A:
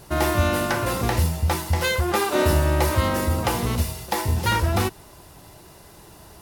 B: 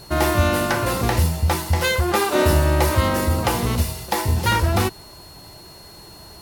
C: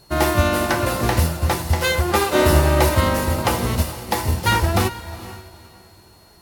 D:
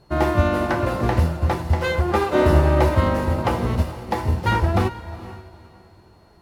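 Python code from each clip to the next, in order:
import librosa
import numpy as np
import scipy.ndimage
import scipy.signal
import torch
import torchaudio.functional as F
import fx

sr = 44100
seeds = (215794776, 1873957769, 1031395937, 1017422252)

y1 = x + 10.0 ** (-47.0 / 20.0) * np.sin(2.0 * np.pi * 4300.0 * np.arange(len(x)) / sr)
y1 = y1 * librosa.db_to_amplitude(2.5)
y2 = fx.peak_eq(y1, sr, hz=85.0, db=-3.5, octaves=0.29)
y2 = fx.echo_diffused(y2, sr, ms=455, feedback_pct=41, wet_db=-10.0)
y2 = fx.upward_expand(y2, sr, threshold_db=-38.0, expansion=1.5)
y2 = y2 * librosa.db_to_amplitude(3.0)
y3 = fx.lowpass(y2, sr, hz=1300.0, slope=6)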